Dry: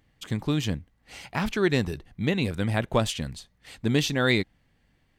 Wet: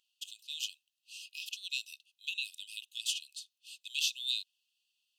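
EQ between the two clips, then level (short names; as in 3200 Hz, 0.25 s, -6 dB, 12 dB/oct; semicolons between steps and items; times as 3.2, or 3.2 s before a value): brick-wall FIR high-pass 2500 Hz; -1.5 dB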